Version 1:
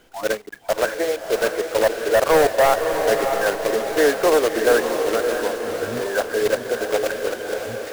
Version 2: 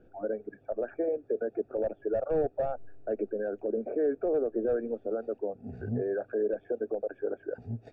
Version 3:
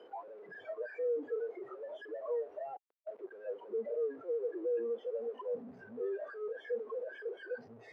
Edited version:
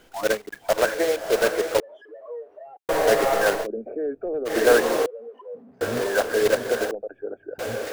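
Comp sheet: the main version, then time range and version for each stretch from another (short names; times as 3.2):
1
1.8–2.89 from 3
3.64–4.48 from 2, crossfade 0.06 s
5.06–5.81 from 3
6.91–7.59 from 2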